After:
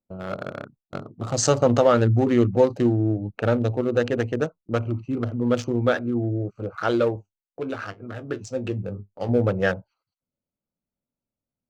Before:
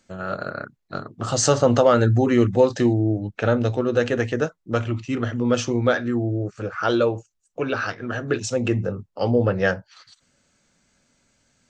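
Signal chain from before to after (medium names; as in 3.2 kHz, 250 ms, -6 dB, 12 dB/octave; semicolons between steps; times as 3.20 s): local Wiener filter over 25 samples; gate with hold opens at -33 dBFS; 7.16–9.29 s: flange 1.1 Hz, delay 9.6 ms, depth 1.9 ms, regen +56%; trim -1 dB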